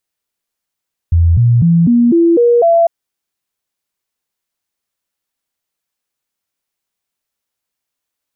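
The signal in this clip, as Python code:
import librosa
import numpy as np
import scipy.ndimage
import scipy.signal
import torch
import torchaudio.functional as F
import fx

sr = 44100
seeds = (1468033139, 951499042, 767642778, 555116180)

y = fx.stepped_sweep(sr, from_hz=84.2, direction='up', per_octave=2, tones=7, dwell_s=0.25, gap_s=0.0, level_db=-6.0)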